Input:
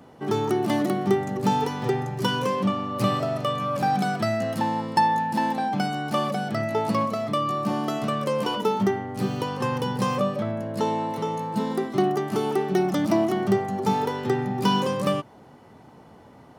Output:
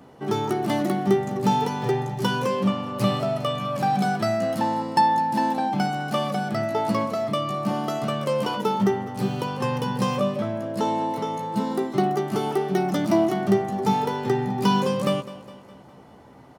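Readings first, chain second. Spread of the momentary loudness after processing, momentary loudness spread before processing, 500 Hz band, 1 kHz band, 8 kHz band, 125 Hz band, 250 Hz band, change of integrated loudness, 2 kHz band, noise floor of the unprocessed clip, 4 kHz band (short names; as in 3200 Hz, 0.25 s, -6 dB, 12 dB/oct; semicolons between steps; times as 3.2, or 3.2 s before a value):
5 LU, 5 LU, +1.0 dB, +1.0 dB, +0.5 dB, +1.0 dB, +1.0 dB, +1.0 dB, 0.0 dB, -49 dBFS, 0.0 dB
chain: doubler 15 ms -9 dB; feedback echo 0.206 s, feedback 52%, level -17 dB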